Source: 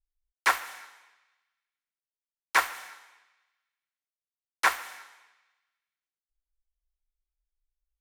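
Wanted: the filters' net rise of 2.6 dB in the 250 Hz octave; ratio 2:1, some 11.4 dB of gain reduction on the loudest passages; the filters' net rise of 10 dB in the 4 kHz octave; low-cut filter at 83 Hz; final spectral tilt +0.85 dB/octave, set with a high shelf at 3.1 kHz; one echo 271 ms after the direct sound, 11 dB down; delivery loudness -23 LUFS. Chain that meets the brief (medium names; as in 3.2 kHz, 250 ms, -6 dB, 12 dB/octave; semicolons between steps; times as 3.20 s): high-pass 83 Hz; peaking EQ 250 Hz +4 dB; treble shelf 3.1 kHz +6 dB; peaking EQ 4 kHz +8 dB; compression 2:1, threshold -36 dBFS; delay 271 ms -11 dB; trim +12.5 dB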